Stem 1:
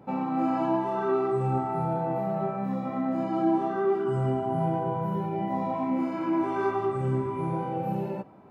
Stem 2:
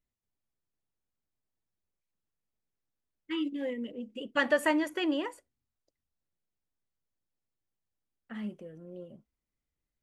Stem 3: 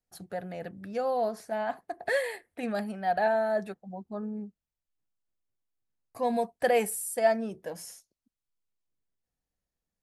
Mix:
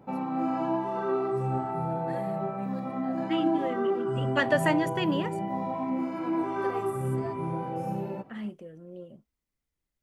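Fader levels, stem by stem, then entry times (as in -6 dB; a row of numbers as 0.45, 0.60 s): -2.5, +1.5, -18.5 dB; 0.00, 0.00, 0.00 s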